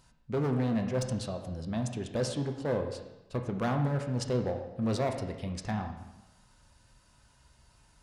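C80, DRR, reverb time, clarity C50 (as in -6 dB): 9.0 dB, 3.5 dB, 1.0 s, 7.0 dB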